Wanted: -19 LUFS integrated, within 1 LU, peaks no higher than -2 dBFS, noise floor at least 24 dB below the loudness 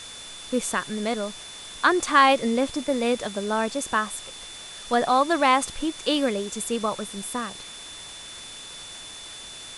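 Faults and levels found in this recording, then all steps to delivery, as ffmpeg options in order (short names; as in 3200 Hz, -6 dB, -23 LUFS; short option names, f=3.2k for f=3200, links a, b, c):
steady tone 3500 Hz; tone level -41 dBFS; noise floor -41 dBFS; noise floor target -48 dBFS; loudness -24.0 LUFS; peak -5.0 dBFS; loudness target -19.0 LUFS
-> -af "bandreject=f=3.5k:w=30"
-af "afftdn=nr=7:nf=-41"
-af "volume=5dB,alimiter=limit=-2dB:level=0:latency=1"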